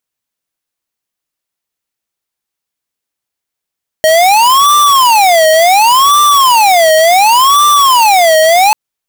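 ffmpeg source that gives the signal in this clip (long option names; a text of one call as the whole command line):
ffmpeg -f lavfi -i "aevalsrc='0.473*(2*lt(mod((904.5*t-275.5/(2*PI*0.69)*sin(2*PI*0.69*t)),1),0.5)-1)':duration=4.69:sample_rate=44100" out.wav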